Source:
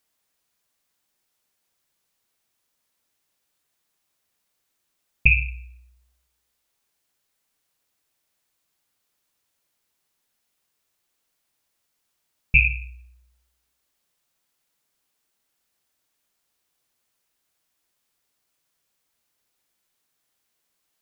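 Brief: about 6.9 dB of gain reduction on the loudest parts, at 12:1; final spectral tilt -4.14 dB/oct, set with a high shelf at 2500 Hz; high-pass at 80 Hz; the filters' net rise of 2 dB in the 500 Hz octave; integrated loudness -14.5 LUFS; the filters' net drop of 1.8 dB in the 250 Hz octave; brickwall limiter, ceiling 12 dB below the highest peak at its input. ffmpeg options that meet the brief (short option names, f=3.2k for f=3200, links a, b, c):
-af "highpass=80,equalizer=f=250:t=o:g=-4.5,equalizer=f=500:t=o:g=4.5,highshelf=f=2.5k:g=-6,acompressor=threshold=-22dB:ratio=12,volume=22dB,alimiter=limit=-1dB:level=0:latency=1"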